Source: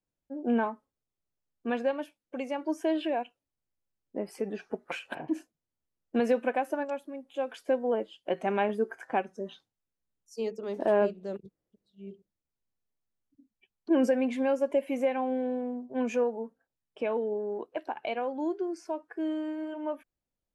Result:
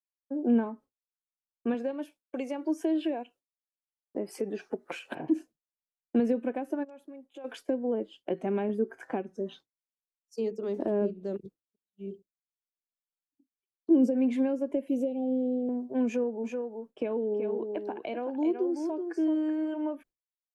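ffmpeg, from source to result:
-filter_complex "[0:a]asettb=1/sr,asplit=3[s0][s1][s2];[s0]atrim=end=1.744[s3];[s1]atrim=start=1.74:end=5.11,asetpts=PTS-STARTPTS,afade=t=in:d=0.004:c=qsin,afade=t=out:st=3.366:d=0.004:c=qsin,bass=f=250:g=-6,treble=f=4000:g=4[s4];[s2]atrim=start=5.106[s5];[s3][s4]acrossfade=d=0.004:c1=hsin:c2=qsin[s6];[s6][s5]acrossfade=d=0.004:c1=qsin:c2=hsin,asplit=3[s7][s8][s9];[s7]afade=t=out:st=6.83:d=0.02[s10];[s8]acompressor=threshold=0.00562:ratio=10:attack=3.2:release=140:knee=1:detection=peak,afade=t=in:st=6.83:d=0.02,afade=t=out:st=7.44:d=0.02[s11];[s9]afade=t=in:st=7.44:d=0.02[s12];[s10][s11][s12]amix=inputs=3:normalize=0,asettb=1/sr,asplit=3[s13][s14][s15];[s13]atrim=end=12.064[s16];[s14]atrim=start=12.06:end=14.15,asetpts=PTS-STARTPTS,afade=t=in:d=0.004:c=qsin,afade=t=out:st=2.086:d=0.004:c=qsin,equalizer=f=1700:w=1.5:g=-12.5[s17];[s15]atrim=start=14.146[s18];[s16][s17]acrossfade=d=0.004:c1=hsin:c2=qsin[s19];[s19][s18]acrossfade=d=0.004:c1=qsin:c2=hsin,asettb=1/sr,asplit=3[s20][s21][s22];[s20]atrim=end=14.884[s23];[s21]atrim=start=14.88:end=15.69,asetpts=PTS-STARTPTS,afade=t=in:d=0.004:c=qsin,afade=t=out:st=0.806:d=0.004:c=qsin,asuperstop=centerf=1400:order=8:qfactor=0.65[s24];[s22]atrim=start=15.686[s25];[s23][s24]acrossfade=d=0.004:c1=hsin:c2=qsin[s26];[s26][s25]acrossfade=d=0.004:c1=qsin:c2=hsin,asplit=3[s27][s28][s29];[s27]afade=t=out:st=16.43:d=0.02[s30];[s28]aecho=1:1:378:0.422,afade=t=in:st=16.43:d=0.02,afade=t=out:st=19.54:d=0.02[s31];[s29]afade=t=in:st=19.54:d=0.02[s32];[s30][s31][s32]amix=inputs=3:normalize=0,agate=range=0.0224:threshold=0.00447:ratio=3:detection=peak,equalizer=f=350:w=1.3:g=5,acrossover=split=360[s33][s34];[s34]acompressor=threshold=0.0126:ratio=6[s35];[s33][s35]amix=inputs=2:normalize=0,volume=1.26"

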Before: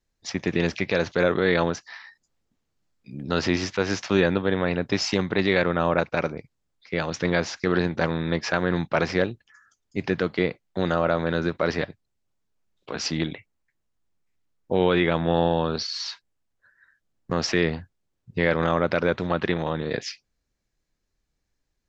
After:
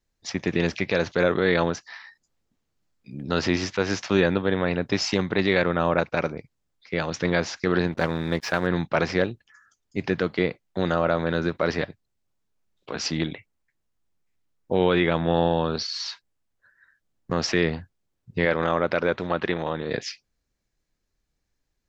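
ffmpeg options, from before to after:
-filter_complex "[0:a]asettb=1/sr,asplit=3[s0][s1][s2];[s0]atrim=end=7.924[s3];[s1]atrim=start=7.92:end=8.67,asetpts=PTS-STARTPTS,afade=t=in:d=0.004:c=qsin,afade=t=out:st=0.746:d=0.004:c=qsin,aeval=exprs='sgn(val(0))*max(abs(val(0))-0.00631,0)':c=same[s4];[s2]atrim=start=8.666[s5];[s3][s4]acrossfade=d=0.004:c1=hsin:c2=qsin[s6];[s6][s5]acrossfade=d=0.004:c1=qsin:c2=hsin,asettb=1/sr,asplit=3[s7][s8][s9];[s7]atrim=end=18.454[s10];[s8]atrim=start=18.45:end=19.89,asetpts=PTS-STARTPTS,afade=t=in:d=0.004:c=qsin,afade=t=out:st=1.436:d=0.004:c=qsin,bass=f=250:g=-5,treble=f=4000:g=-3[s11];[s9]atrim=start=19.886[s12];[s10][s11]acrossfade=d=0.004:c1=hsin:c2=qsin[s13];[s13][s12]acrossfade=d=0.004:c1=qsin:c2=hsin"

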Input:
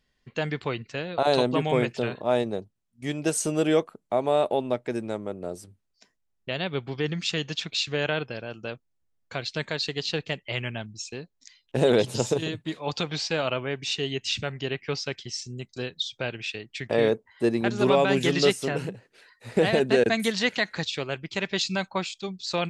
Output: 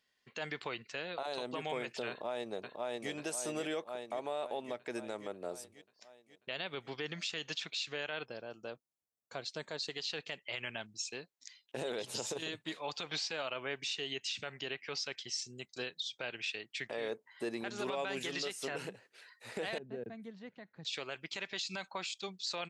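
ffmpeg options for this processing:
-filter_complex "[0:a]asplit=2[s0][s1];[s1]afade=t=in:st=2.09:d=0.01,afade=t=out:st=3.11:d=0.01,aecho=0:1:540|1080|1620|2160|2700|3240|3780|4320|4860:0.630957|0.378574|0.227145|0.136287|0.0817721|0.0490632|0.0294379|0.0176628|0.0105977[s2];[s0][s2]amix=inputs=2:normalize=0,asettb=1/sr,asplit=3[s3][s4][s5];[s3]atrim=end=8.254[s6];[s4]atrim=start=8.25:end=9.9,asetpts=PTS-STARTPTS,afade=t=in:d=0.004:c=qsin,afade=t=out:st=1.646:d=0.004:c=qsin,equalizer=f=2400:w=0.69:g=-12[s7];[s5]atrim=start=9.896[s8];[s6][s7]acrossfade=d=0.004:c1=hsin:c2=qsin[s9];[s9][s8]acrossfade=d=0.004:c1=qsin:c2=hsin,asettb=1/sr,asplit=3[s10][s11][s12];[s10]atrim=end=19.784[s13];[s11]atrim=start=19.78:end=20.85,asetpts=PTS-STARTPTS,afade=t=in:d=0.004:c=qsin,afade=t=out:st=1.066:d=0.004:c=qsin,bandpass=f=120:t=q:w=1.5[s14];[s12]atrim=start=20.846[s15];[s13][s14]acrossfade=d=0.004:c1=hsin:c2=qsin[s16];[s16][s15]acrossfade=d=0.004:c1=qsin:c2=hsin,highpass=f=750:p=1,acompressor=threshold=0.0355:ratio=6,alimiter=level_in=1.19:limit=0.0631:level=0:latency=1:release=54,volume=0.841,volume=0.794"

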